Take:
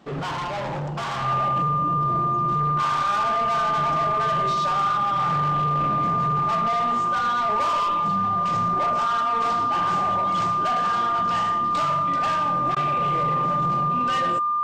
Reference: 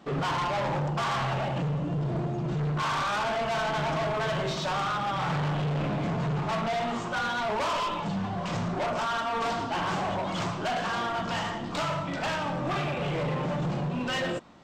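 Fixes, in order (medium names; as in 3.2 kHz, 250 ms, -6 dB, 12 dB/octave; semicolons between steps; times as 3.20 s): band-stop 1.2 kHz, Q 30; interpolate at 12.75 s, 13 ms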